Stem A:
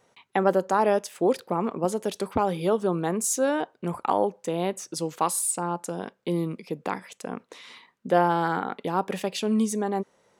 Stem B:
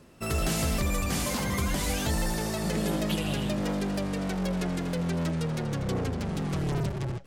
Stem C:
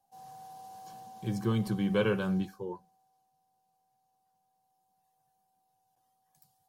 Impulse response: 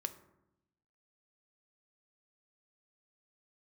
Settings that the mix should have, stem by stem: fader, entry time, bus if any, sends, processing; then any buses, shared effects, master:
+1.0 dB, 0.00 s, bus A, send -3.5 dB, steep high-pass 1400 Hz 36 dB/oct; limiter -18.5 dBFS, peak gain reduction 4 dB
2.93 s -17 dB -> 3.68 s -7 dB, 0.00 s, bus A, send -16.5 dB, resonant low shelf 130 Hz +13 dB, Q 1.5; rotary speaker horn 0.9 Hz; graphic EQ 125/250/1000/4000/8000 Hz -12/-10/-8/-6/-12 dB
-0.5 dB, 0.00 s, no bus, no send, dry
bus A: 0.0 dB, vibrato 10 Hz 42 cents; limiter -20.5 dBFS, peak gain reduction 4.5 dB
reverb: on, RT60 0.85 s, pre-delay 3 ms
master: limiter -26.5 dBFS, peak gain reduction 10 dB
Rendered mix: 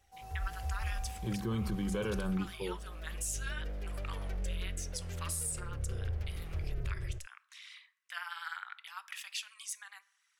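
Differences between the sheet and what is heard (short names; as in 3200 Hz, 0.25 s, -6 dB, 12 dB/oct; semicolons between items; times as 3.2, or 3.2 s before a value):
stem A +1.0 dB -> -6.0 dB; stem B: send off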